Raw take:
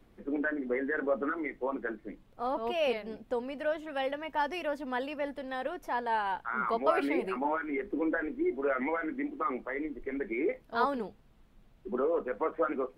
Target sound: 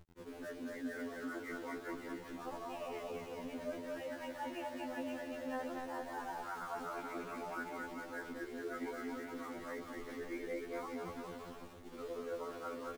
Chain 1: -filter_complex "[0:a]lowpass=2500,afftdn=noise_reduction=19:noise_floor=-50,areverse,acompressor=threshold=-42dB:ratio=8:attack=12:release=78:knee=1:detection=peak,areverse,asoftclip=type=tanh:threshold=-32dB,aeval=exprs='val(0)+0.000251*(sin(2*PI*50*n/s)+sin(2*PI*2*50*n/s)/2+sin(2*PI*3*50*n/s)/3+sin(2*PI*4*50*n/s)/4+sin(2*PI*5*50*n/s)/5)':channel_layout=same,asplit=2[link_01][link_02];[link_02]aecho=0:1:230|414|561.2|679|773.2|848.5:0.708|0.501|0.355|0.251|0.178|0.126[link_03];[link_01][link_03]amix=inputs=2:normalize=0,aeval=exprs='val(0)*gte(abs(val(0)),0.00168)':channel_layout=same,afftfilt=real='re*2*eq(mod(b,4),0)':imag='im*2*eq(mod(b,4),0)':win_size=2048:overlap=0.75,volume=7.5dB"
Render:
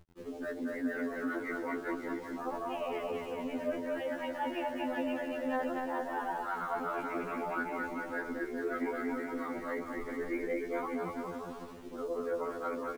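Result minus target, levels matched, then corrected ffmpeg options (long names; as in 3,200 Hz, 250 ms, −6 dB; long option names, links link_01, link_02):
downward compressor: peak gain reduction −8 dB
-filter_complex "[0:a]lowpass=2500,afftdn=noise_reduction=19:noise_floor=-50,areverse,acompressor=threshold=-51dB:ratio=8:attack=12:release=78:knee=1:detection=peak,areverse,asoftclip=type=tanh:threshold=-32dB,aeval=exprs='val(0)+0.000251*(sin(2*PI*50*n/s)+sin(2*PI*2*50*n/s)/2+sin(2*PI*3*50*n/s)/3+sin(2*PI*4*50*n/s)/4+sin(2*PI*5*50*n/s)/5)':channel_layout=same,asplit=2[link_01][link_02];[link_02]aecho=0:1:230|414|561.2|679|773.2|848.5:0.708|0.501|0.355|0.251|0.178|0.126[link_03];[link_01][link_03]amix=inputs=2:normalize=0,aeval=exprs='val(0)*gte(abs(val(0)),0.00168)':channel_layout=same,afftfilt=real='re*2*eq(mod(b,4),0)':imag='im*2*eq(mod(b,4),0)':win_size=2048:overlap=0.75,volume=7.5dB"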